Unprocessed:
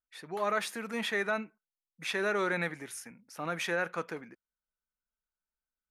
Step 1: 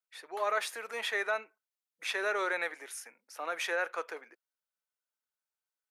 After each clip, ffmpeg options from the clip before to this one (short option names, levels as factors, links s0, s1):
-af "highpass=f=430:w=0.5412,highpass=f=430:w=1.3066"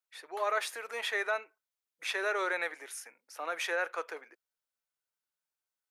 -af "equalizer=f=210:t=o:w=0.25:g=-11.5"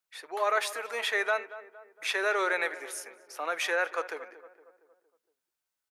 -filter_complex "[0:a]asplit=2[s0][s1];[s1]adelay=231,lowpass=f=1500:p=1,volume=0.2,asplit=2[s2][s3];[s3]adelay=231,lowpass=f=1500:p=1,volume=0.52,asplit=2[s4][s5];[s5]adelay=231,lowpass=f=1500:p=1,volume=0.52,asplit=2[s6][s7];[s7]adelay=231,lowpass=f=1500:p=1,volume=0.52,asplit=2[s8][s9];[s9]adelay=231,lowpass=f=1500:p=1,volume=0.52[s10];[s0][s2][s4][s6][s8][s10]amix=inputs=6:normalize=0,volume=1.58"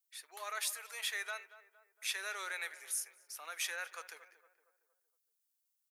-af "aderivative,volume=1.12"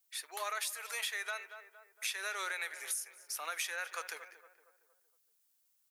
-af "acompressor=threshold=0.00794:ratio=12,volume=2.51"